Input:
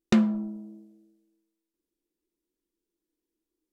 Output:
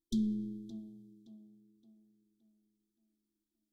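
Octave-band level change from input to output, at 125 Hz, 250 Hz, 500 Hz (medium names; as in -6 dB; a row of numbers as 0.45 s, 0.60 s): no reading, -9.5 dB, -17.5 dB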